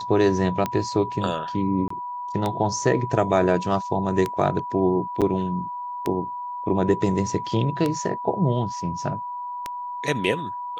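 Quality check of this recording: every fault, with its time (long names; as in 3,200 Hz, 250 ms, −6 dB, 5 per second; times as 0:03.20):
scratch tick 33 1/3 rpm −11 dBFS
whistle 980 Hz −29 dBFS
0:01.88–0:01.90: drop-out 24 ms
0:05.21–0:05.22: drop-out 7.2 ms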